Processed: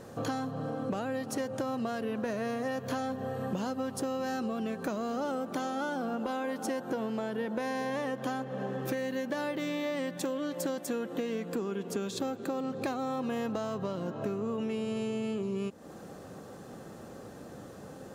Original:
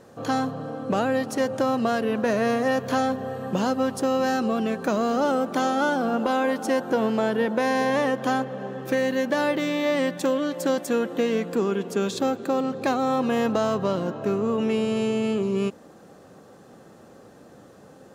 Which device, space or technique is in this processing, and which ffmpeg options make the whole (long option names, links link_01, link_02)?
ASMR close-microphone chain: -af "lowshelf=frequency=130:gain=6,acompressor=threshold=-33dB:ratio=6,highshelf=frequency=8500:gain=4,volume=1.5dB"